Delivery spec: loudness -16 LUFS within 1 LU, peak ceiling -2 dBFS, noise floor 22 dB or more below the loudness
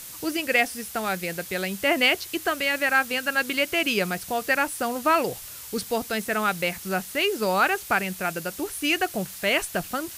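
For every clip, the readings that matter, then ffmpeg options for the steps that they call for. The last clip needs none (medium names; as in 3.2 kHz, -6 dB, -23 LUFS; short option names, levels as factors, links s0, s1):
noise floor -40 dBFS; noise floor target -47 dBFS; loudness -24.5 LUFS; peak level -9.0 dBFS; loudness target -16.0 LUFS
-> -af "afftdn=nr=7:nf=-40"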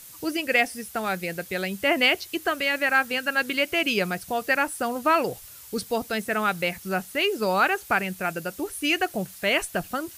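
noise floor -45 dBFS; noise floor target -47 dBFS
-> -af "afftdn=nr=6:nf=-45"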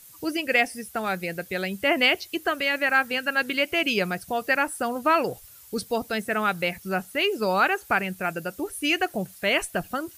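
noise floor -49 dBFS; loudness -25.0 LUFS; peak level -9.0 dBFS; loudness target -16.0 LUFS
-> -af "volume=2.82,alimiter=limit=0.794:level=0:latency=1"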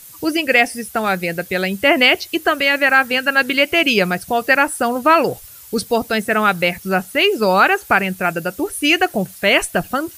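loudness -16.0 LUFS; peak level -2.0 dBFS; noise floor -40 dBFS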